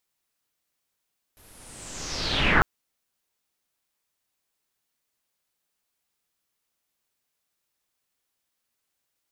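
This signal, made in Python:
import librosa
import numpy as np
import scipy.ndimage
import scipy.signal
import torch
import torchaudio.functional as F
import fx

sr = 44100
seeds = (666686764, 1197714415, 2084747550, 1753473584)

y = fx.riser_noise(sr, seeds[0], length_s=1.25, colour='pink', kind='lowpass', start_hz=12000.0, end_hz=1300.0, q=4.7, swell_db=38, law='linear')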